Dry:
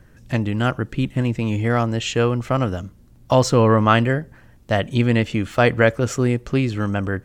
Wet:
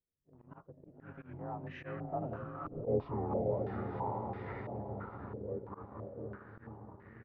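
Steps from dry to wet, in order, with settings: inharmonic rescaling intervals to 91%; Doppler pass-by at 2.7, 51 m/s, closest 4.2 m; low shelf 180 Hz +3.5 dB; harmoniser -7 st -8 dB, +5 st -17 dB; gate -52 dBFS, range -13 dB; diffused feedback echo 0.534 s, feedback 49%, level -4.5 dB; sample leveller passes 1; auto swell 0.112 s; compressor 2:1, threshold -39 dBFS, peak gain reduction 11.5 dB; stepped low-pass 3 Hz 480–1900 Hz; gain -3.5 dB

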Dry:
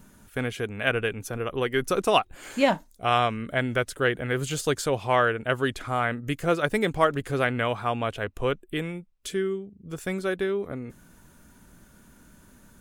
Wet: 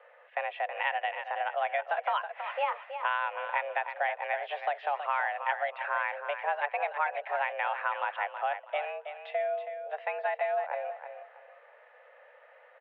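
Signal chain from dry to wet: compressor, threshold -29 dBFS, peak gain reduction 13.5 dB; on a send: feedback echo 0.323 s, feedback 27%, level -9 dB; on the sum: mistuned SSB +290 Hz 260–2500 Hz; gain +2.5 dB

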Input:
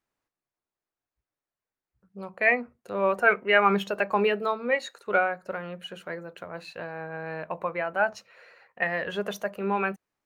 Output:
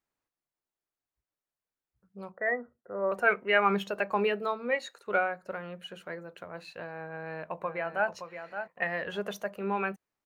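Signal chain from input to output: 2.32–3.12 rippled Chebyshev low-pass 2000 Hz, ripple 6 dB; 7.06–8.1 echo throw 0.57 s, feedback 10%, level -8.5 dB; gain -4 dB

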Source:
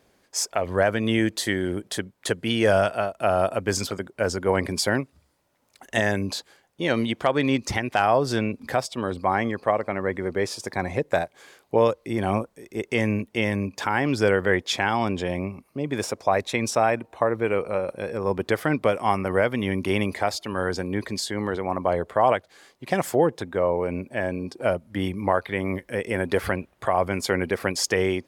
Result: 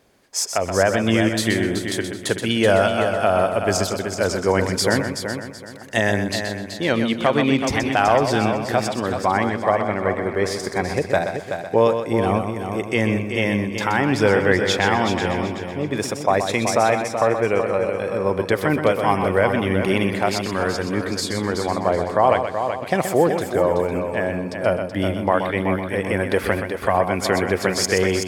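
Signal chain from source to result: multi-head echo 0.126 s, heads first and third, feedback 45%, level -8 dB; gain +3 dB

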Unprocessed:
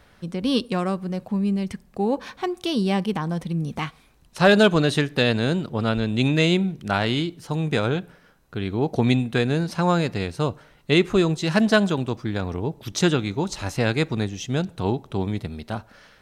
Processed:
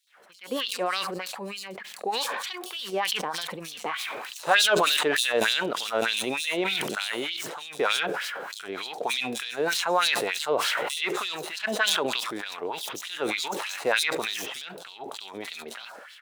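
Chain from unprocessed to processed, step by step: median filter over 9 samples; in parallel at +1 dB: compressor, threshold -31 dBFS, peak gain reduction 18.5 dB; on the sum: bands offset in time highs, lows 70 ms, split 4300 Hz; LFO high-pass sine 3.3 Hz 440–4100 Hz; sustainer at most 23 dB/s; gain -7.5 dB

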